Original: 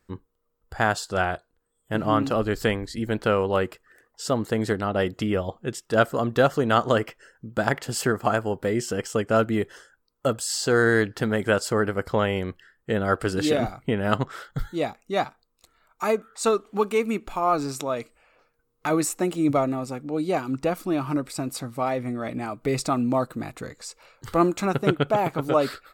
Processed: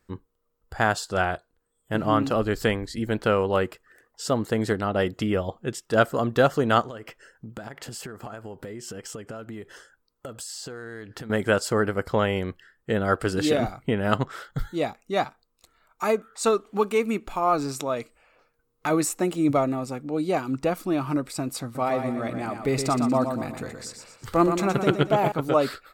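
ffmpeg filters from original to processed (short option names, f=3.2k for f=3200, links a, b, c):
-filter_complex "[0:a]asettb=1/sr,asplit=3[a][b][c];[a]atrim=end=6.814[d];[b]atrim=start=6.81:end=11.3,asetpts=PTS-STARTPTS,afade=t=in:d=0.004:c=qsin,afade=t=out:st=4.486:d=0.004:c=qsin,acompressor=threshold=-33dB:ratio=16:attack=3.2:release=140:knee=1:detection=peak[e];[c]atrim=start=11.296[f];[d][e]acrossfade=d=0.004:c1=hsin:c2=qsin[g];[g][f]acrossfade=d=0.004:c1=qsin:c2=hsin,asettb=1/sr,asplit=3[h][i][j];[h]atrim=end=21.634[k];[i]atrim=start=21.63:end=25.32,asetpts=PTS-STARTPTS,afade=t=in:d=0.004:c=qsin,afade=t=out:st=3.686:d=0.004:c=qsin,aecho=1:1:119|238|357|476|595:0.447|0.197|0.0865|0.0381|0.0167,atrim=end_sample=162729[l];[j]atrim=start=25.316[m];[k][l]acrossfade=d=0.004:c1=hsin:c2=qsin[n];[n][m]acrossfade=d=0.004:c1=qsin:c2=hsin"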